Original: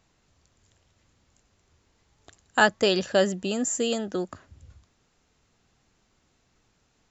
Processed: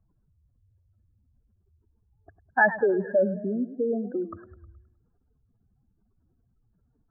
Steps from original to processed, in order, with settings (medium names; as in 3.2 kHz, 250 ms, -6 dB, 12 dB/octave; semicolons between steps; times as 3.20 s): spectral contrast enhancement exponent 2.9; brick-wall FIR low-pass 1.8 kHz; modulated delay 105 ms, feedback 46%, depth 144 cents, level -14.5 dB